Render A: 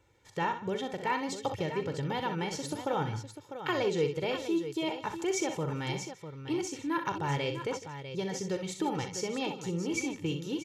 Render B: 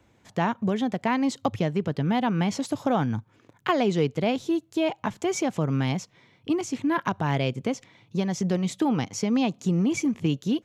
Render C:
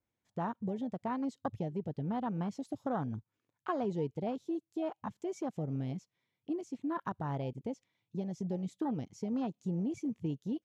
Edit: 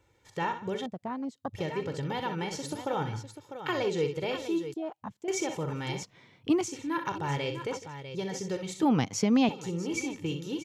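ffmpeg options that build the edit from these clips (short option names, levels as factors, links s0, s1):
-filter_complex "[2:a]asplit=2[s0][s1];[1:a]asplit=2[s2][s3];[0:a]asplit=5[s4][s5][s6][s7][s8];[s4]atrim=end=0.862[s9];[s0]atrim=start=0.858:end=1.552[s10];[s5]atrim=start=1.548:end=4.742[s11];[s1]atrim=start=4.738:end=5.282[s12];[s6]atrim=start=5.278:end=6.032[s13];[s2]atrim=start=6.028:end=6.682[s14];[s7]atrim=start=6.678:end=8.832[s15];[s3]atrim=start=8.828:end=9.492[s16];[s8]atrim=start=9.488[s17];[s9][s10]acrossfade=d=0.004:c1=hsin:c2=hsin[s18];[s18][s11]acrossfade=d=0.004:c1=hsin:c2=hsin[s19];[s19][s12]acrossfade=d=0.004:c1=hsin:c2=hsin[s20];[s20][s13]acrossfade=d=0.004:c1=hsin:c2=hsin[s21];[s21][s14]acrossfade=d=0.004:c1=hsin:c2=hsin[s22];[s22][s15]acrossfade=d=0.004:c1=hsin:c2=hsin[s23];[s23][s16]acrossfade=d=0.004:c1=hsin:c2=hsin[s24];[s24][s17]acrossfade=d=0.004:c1=hsin:c2=hsin"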